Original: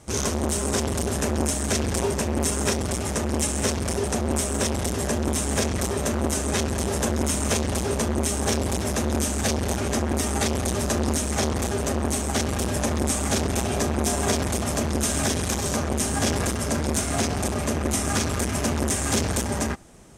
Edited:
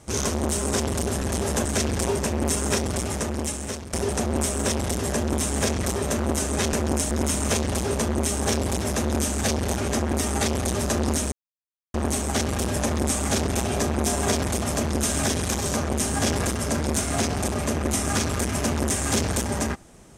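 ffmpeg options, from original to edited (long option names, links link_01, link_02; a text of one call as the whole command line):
ffmpeg -i in.wav -filter_complex "[0:a]asplit=8[link_01][link_02][link_03][link_04][link_05][link_06][link_07][link_08];[link_01]atrim=end=1.222[link_09];[link_02]atrim=start=6.678:end=7.112[link_10];[link_03]atrim=start=1.598:end=3.88,asetpts=PTS-STARTPTS,afade=type=out:start_time=1.412:duration=0.87:silence=0.223872[link_11];[link_04]atrim=start=3.88:end=6.682,asetpts=PTS-STARTPTS,afade=type=in:duration=0.004:curve=hsin:silence=0.223872[link_12];[link_05]atrim=start=1.218:end=1.602[link_13];[link_06]atrim=start=7.108:end=11.32,asetpts=PTS-STARTPTS,afade=type=out:start_time=4.208:duration=0.004:curve=hsin[link_14];[link_07]atrim=start=11.32:end=11.94,asetpts=PTS-STARTPTS,volume=0[link_15];[link_08]atrim=start=11.94,asetpts=PTS-STARTPTS,afade=type=in:duration=0.004:curve=hsin[link_16];[link_09][link_10]acrossfade=duration=0.004:curve1=hsin:curve2=hsin[link_17];[link_11][link_12]concat=n=2:v=0:a=1[link_18];[link_17][link_18]acrossfade=duration=0.004:curve1=hsin:curve2=hsin[link_19];[link_19][link_13]acrossfade=duration=0.004:curve1=hsin:curve2=hsin[link_20];[link_14][link_15][link_16]concat=n=3:v=0:a=1[link_21];[link_20][link_21]acrossfade=duration=0.004:curve1=hsin:curve2=hsin" out.wav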